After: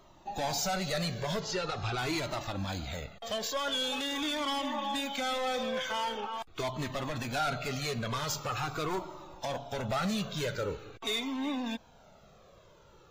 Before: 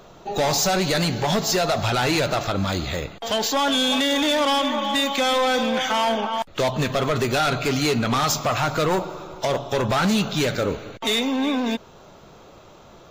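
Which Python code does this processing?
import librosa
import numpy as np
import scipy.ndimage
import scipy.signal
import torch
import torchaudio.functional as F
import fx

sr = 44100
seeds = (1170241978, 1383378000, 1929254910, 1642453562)

y = fx.lowpass(x, sr, hz=5400.0, slope=12, at=(1.4, 1.98))
y = fx.comb_cascade(y, sr, direction='falling', hz=0.44)
y = y * librosa.db_to_amplitude(-7.0)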